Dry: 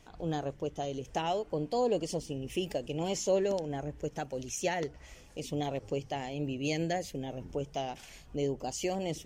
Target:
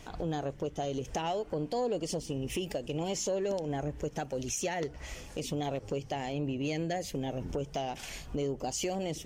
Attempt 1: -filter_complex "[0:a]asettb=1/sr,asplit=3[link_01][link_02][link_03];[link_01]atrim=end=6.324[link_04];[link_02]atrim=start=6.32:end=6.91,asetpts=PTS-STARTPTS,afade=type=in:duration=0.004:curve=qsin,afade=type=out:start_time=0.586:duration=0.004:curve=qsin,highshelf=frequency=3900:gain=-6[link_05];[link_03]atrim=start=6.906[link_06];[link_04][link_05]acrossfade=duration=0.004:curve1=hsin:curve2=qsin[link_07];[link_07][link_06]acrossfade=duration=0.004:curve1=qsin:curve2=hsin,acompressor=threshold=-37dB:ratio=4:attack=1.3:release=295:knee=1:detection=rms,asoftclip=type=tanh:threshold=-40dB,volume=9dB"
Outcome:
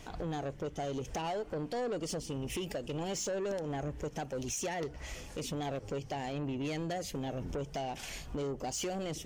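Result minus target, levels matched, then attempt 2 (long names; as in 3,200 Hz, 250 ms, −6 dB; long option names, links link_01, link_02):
soft clipping: distortion +15 dB
-filter_complex "[0:a]asettb=1/sr,asplit=3[link_01][link_02][link_03];[link_01]atrim=end=6.324[link_04];[link_02]atrim=start=6.32:end=6.91,asetpts=PTS-STARTPTS,afade=type=in:duration=0.004:curve=qsin,afade=type=out:start_time=0.586:duration=0.004:curve=qsin,highshelf=frequency=3900:gain=-6[link_05];[link_03]atrim=start=6.906[link_06];[link_04][link_05]acrossfade=duration=0.004:curve1=hsin:curve2=qsin[link_07];[link_07][link_06]acrossfade=duration=0.004:curve1=qsin:curve2=hsin,acompressor=threshold=-37dB:ratio=4:attack=1.3:release=295:knee=1:detection=rms,asoftclip=type=tanh:threshold=-30dB,volume=9dB"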